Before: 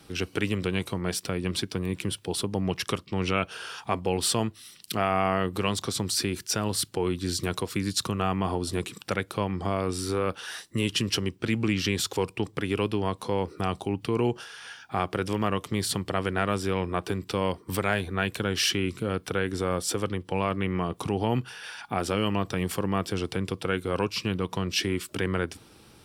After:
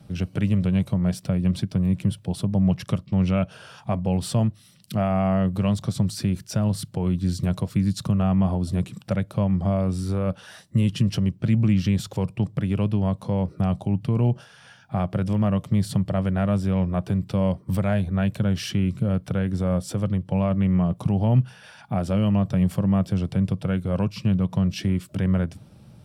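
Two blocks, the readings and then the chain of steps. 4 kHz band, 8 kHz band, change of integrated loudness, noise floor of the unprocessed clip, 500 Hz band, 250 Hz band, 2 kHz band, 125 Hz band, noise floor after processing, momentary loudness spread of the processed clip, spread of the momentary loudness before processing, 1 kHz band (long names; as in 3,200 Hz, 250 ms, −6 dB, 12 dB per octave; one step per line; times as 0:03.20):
−8.0 dB, −8.0 dB, +4.5 dB, −55 dBFS, −1.0 dB, +7.5 dB, −7.0 dB, +10.0 dB, −51 dBFS, 5 LU, 5 LU, −3.0 dB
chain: low shelf with overshoot 180 Hz +10 dB, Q 1.5
hollow resonant body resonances 200/580 Hz, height 15 dB, ringing for 25 ms
level −8 dB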